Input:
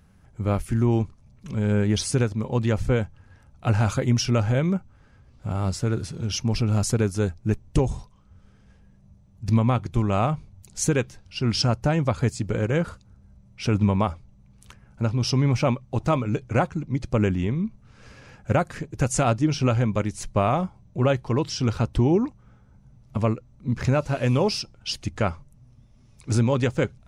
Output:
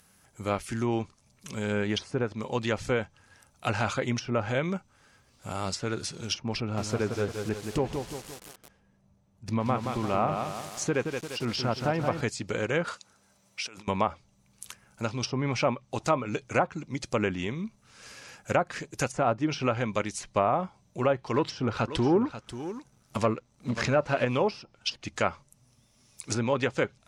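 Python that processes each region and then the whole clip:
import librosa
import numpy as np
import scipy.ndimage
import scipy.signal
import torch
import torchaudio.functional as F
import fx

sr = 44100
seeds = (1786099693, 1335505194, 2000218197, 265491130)

y = fx.chain(x, sr, fx.lowpass(hz=1400.0, slope=6),
    fx.echo_crushed(ms=174, feedback_pct=55, bits=7, wet_db=-5.5), at=(6.6, 12.21))
y = fx.chain(y, sr, fx.highpass(hz=630.0, slope=6),
    fx.high_shelf(hz=8300.0, db=-5.5),
    fx.over_compress(threshold_db=-41.0, ratio=-1.0), at=(12.87, 13.88))
y = fx.chain(y, sr, fx.leveller(passes=1),
    fx.echo_single(ms=538, db=-13.0), at=(21.34, 24.25))
y = fx.riaa(y, sr, side='recording')
y = fx.env_lowpass_down(y, sr, base_hz=1200.0, full_db=-19.0)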